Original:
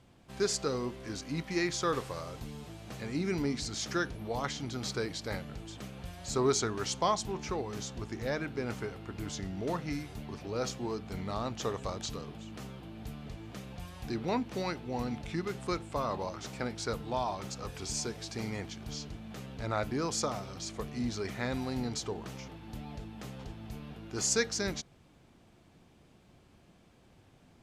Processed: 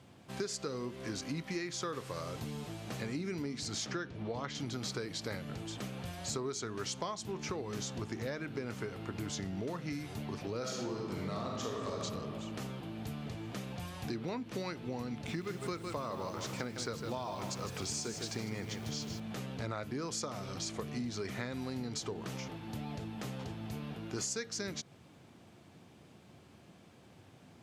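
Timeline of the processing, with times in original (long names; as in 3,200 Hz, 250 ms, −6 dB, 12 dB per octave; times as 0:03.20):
0:03.86–0:04.55: high-frequency loss of the air 100 metres
0:10.59–0:11.99: thrown reverb, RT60 1.4 s, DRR −2 dB
0:15.12–0:19.20: feedback echo at a low word length 155 ms, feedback 35%, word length 9 bits, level −8.5 dB
whole clip: high-pass filter 83 Hz 24 dB per octave; dynamic equaliser 790 Hz, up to −5 dB, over −51 dBFS, Q 2.9; downward compressor 10 to 1, threshold −38 dBFS; level +3.5 dB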